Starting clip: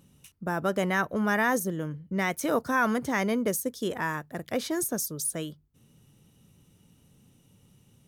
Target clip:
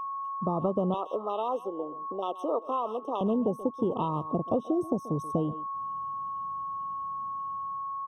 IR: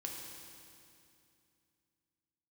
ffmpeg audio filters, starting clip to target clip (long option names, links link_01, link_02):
-filter_complex "[0:a]lowpass=frequency=1600:poles=1,afwtdn=0.0224,asplit=2[link_01][link_02];[link_02]adelay=130,highpass=300,lowpass=3400,asoftclip=type=hard:threshold=-24dB,volume=-18dB[link_03];[link_01][link_03]amix=inputs=2:normalize=0,dynaudnorm=framelen=180:gausssize=7:maxgain=16dB,aeval=exprs='val(0)+0.0251*sin(2*PI*1100*n/s)':channel_layout=same,acompressor=threshold=-25dB:ratio=6,asettb=1/sr,asplit=3[link_04][link_05][link_06];[link_04]atrim=end=0.944[link_07];[link_05]atrim=start=0.94:end=3.21,asetpts=PTS-STARTPTS,afade=type=in:duration=0.004:curve=qsin,afade=type=out:start_time=2.266:duration=0.004:curve=qsin,highpass=frequency=370:width=0.5412,highpass=frequency=370:width=1.3066[link_08];[link_06]atrim=start=3.206[link_09];[link_07][link_08]acrossfade=duration=0.004:curve1=hsin:curve2=qsin[link_10];[link_10][link_09]acrossfade=duration=0.004:curve1=qsin:curve2=hsin,afftfilt=real='re*eq(mod(floor(b*sr/1024/1300),2),0)':imag='im*eq(mod(floor(b*sr/1024/1300),2),0)':win_size=1024:overlap=0.75"